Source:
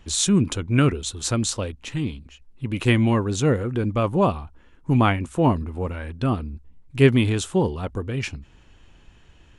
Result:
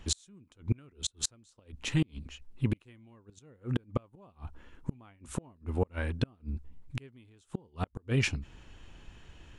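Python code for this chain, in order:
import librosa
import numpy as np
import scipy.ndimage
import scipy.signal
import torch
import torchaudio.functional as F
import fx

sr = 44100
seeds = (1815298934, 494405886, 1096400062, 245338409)

y = fx.gate_flip(x, sr, shuts_db=-17.0, range_db=-37)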